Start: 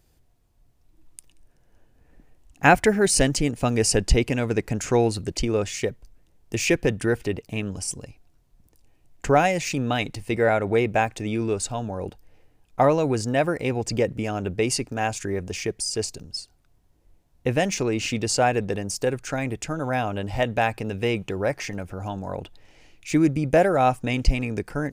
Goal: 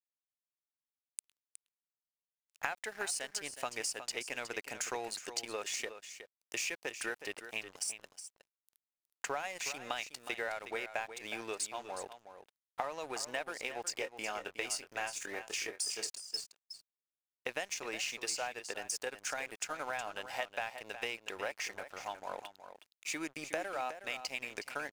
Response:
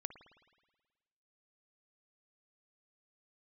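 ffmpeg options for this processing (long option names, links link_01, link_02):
-filter_complex "[0:a]highpass=860,acompressor=threshold=-33dB:ratio=12,aeval=exprs='sgn(val(0))*max(abs(val(0))-0.00299,0)':channel_layout=same,asettb=1/sr,asplit=3[link_01][link_02][link_03];[link_01]atrim=end=13.854[link_04];[link_02]atrim=start=13.85:end=16.07,asetpts=PTS-STARTPTS,afade=type=in:duration=0.004:curve=qsin,afade=type=out:start_time=2.216:duration=0.004:curve=qsin,asplit=2[link_05][link_06];[link_06]adelay=24,volume=-8.5dB[link_07];[link_05][link_07]amix=inputs=2:normalize=0,atrim=end_sample=97902[link_08];[link_03]atrim=start=16.066[link_09];[link_04][link_08]acrossfade=duration=0.004:curve1=hsin:curve2=qsin[link_10];[link_10][link_09]acrossfade=duration=0.004:curve1=qsin:curve2=hsin,aecho=1:1:366:0.282"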